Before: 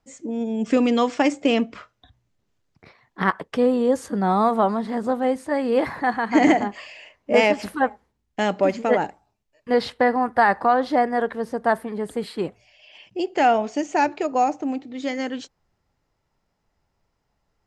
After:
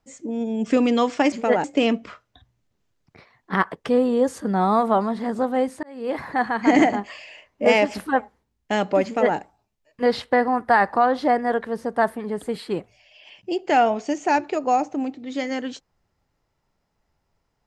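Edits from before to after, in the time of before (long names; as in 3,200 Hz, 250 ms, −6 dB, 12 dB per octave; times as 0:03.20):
0:05.51–0:06.06: fade in
0:08.73–0:09.05: duplicate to 0:01.32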